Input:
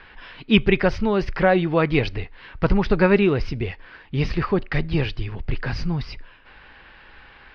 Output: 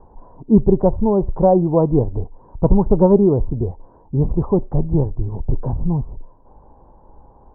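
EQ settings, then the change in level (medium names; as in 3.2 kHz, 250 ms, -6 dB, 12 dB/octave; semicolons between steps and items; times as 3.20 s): Chebyshev low-pass 970 Hz, order 5; distance through air 420 m; +6.0 dB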